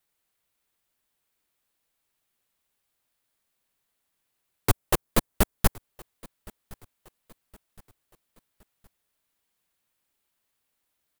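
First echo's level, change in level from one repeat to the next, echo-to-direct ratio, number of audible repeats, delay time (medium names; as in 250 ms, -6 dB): -24.0 dB, -7.5 dB, -23.0 dB, 2, 1066 ms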